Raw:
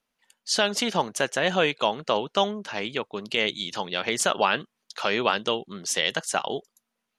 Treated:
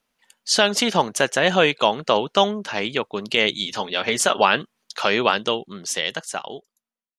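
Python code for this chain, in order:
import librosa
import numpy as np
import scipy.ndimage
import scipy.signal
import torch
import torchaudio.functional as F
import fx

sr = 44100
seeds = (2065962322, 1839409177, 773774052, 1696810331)

y = fx.fade_out_tail(x, sr, length_s=2.17)
y = fx.notch_comb(y, sr, f0_hz=170.0, at=(3.65, 4.41))
y = y * 10.0 ** (5.5 / 20.0)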